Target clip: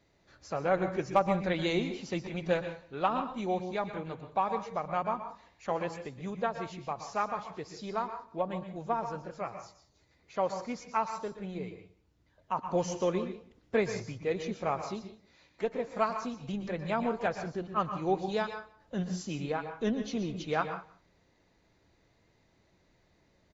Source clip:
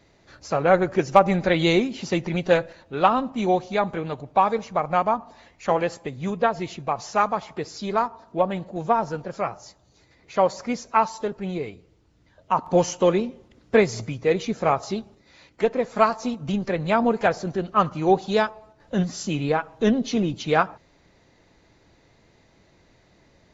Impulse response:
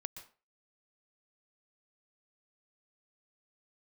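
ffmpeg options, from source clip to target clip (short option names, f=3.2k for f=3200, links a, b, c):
-filter_complex "[0:a]aecho=1:1:179:0.0794[a];[1:a]atrim=start_sample=2205,afade=t=out:st=0.27:d=0.01,atrim=end_sample=12348[b];[a][b]afir=irnorm=-1:irlink=0,volume=-7.5dB"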